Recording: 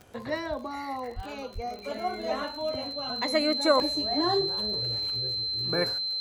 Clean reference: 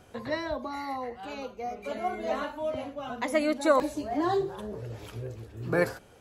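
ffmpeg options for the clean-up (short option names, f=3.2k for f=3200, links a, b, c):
-filter_complex "[0:a]adeclick=t=4,bandreject=f=4.1k:w=30,asplit=3[a][b][c];[a]afade=t=out:st=1.15:d=0.02[d];[b]highpass=f=140:w=0.5412,highpass=f=140:w=1.3066,afade=t=in:st=1.15:d=0.02,afade=t=out:st=1.27:d=0.02[e];[c]afade=t=in:st=1.27:d=0.02[f];[d][e][f]amix=inputs=3:normalize=0,asplit=3[g][h][i];[g]afade=t=out:st=1.54:d=0.02[j];[h]highpass=f=140:w=0.5412,highpass=f=140:w=1.3066,afade=t=in:st=1.54:d=0.02,afade=t=out:st=1.66:d=0.02[k];[i]afade=t=in:st=1.66:d=0.02[l];[j][k][l]amix=inputs=3:normalize=0,asetnsamples=n=441:p=0,asendcmd='5 volume volume 3.5dB',volume=0dB"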